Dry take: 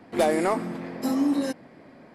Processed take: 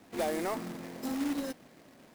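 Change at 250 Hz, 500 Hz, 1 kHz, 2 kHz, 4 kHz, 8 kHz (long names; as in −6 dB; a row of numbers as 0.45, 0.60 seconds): −9.5, −10.0, −9.5, −8.0, −5.5, −5.0 decibels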